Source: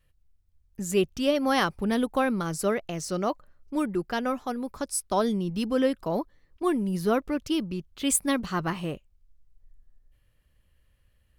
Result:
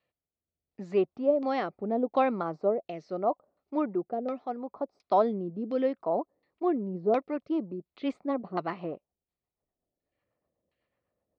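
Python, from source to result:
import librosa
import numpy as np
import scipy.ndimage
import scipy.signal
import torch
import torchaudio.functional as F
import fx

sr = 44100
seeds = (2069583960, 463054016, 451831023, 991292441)

y = fx.rotary_switch(x, sr, hz=0.75, then_hz=8.0, switch_at_s=6.8)
y = fx.filter_lfo_lowpass(y, sr, shape='saw_down', hz=1.4, low_hz=520.0, high_hz=3100.0, q=1.1)
y = fx.cabinet(y, sr, low_hz=280.0, low_slope=12, high_hz=5700.0, hz=(700.0, 1600.0, 3000.0, 4300.0), db=(7, -10, -6, 6))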